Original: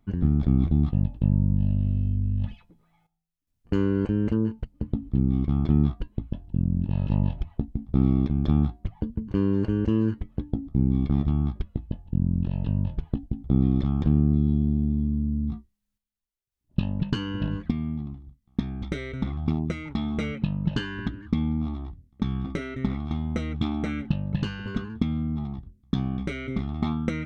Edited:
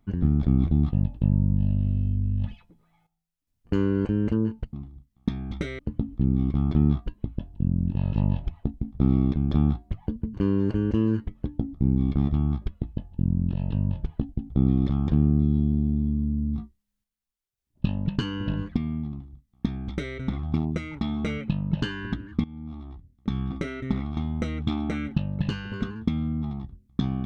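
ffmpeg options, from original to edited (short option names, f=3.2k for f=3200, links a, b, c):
-filter_complex "[0:a]asplit=4[a][b][c][d];[a]atrim=end=4.732[e];[b]atrim=start=18.038:end=19.102[f];[c]atrim=start=4.728:end=21.38,asetpts=PTS-STARTPTS,afade=t=out:st=16.648:d=0.004:c=hsin:silence=0.105925[g];[d]atrim=start=21.38,asetpts=PTS-STARTPTS,afade=t=in:d=0.96:silence=0.105925[h];[e][f]acrossfade=d=0.004:c1=hsin:c2=hsin[i];[g][h]concat=n=2:v=0:a=1[j];[i][j]acrossfade=d=0.004:c1=hsin:c2=hsin"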